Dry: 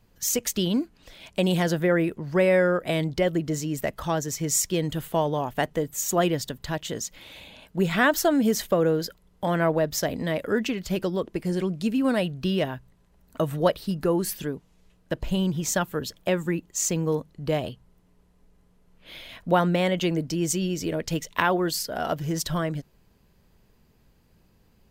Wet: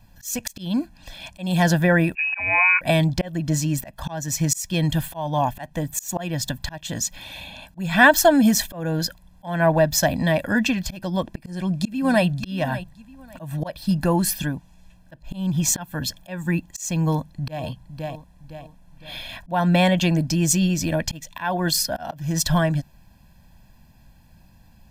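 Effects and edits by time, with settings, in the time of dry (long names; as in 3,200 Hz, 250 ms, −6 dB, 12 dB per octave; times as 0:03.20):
0:02.15–0:02.81: voice inversion scrambler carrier 2,700 Hz
0:11.30–0:12.26: delay throw 570 ms, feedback 20%, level −14 dB
0:17.04–0:17.64: delay throw 510 ms, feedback 40%, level −11.5 dB
whole clip: comb filter 1.2 ms, depth 97%; volume swells 298 ms; level +4.5 dB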